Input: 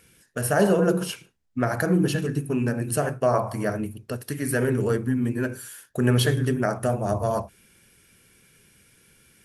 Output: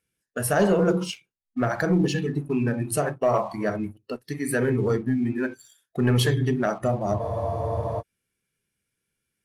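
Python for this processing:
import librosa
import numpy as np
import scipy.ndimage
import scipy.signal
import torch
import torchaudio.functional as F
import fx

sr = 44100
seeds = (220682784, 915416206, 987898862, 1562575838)

y = fx.noise_reduce_blind(x, sr, reduce_db=18)
y = fx.leveller(y, sr, passes=1)
y = fx.spec_freeze(y, sr, seeds[0], at_s=7.21, hold_s=0.79)
y = y * 10.0 ** (-3.0 / 20.0)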